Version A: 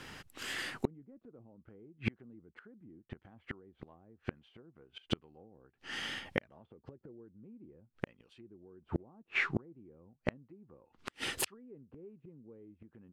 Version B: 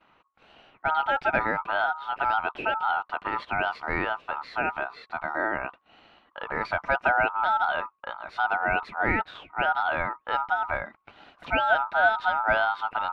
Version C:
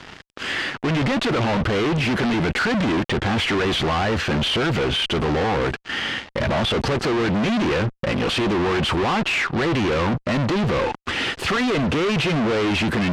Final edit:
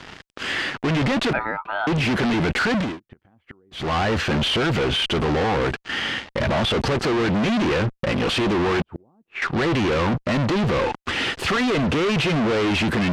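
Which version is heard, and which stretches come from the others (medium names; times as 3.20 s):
C
1.33–1.87 s: from B
2.88–3.83 s: from A, crossfade 0.24 s
8.82–9.42 s: from A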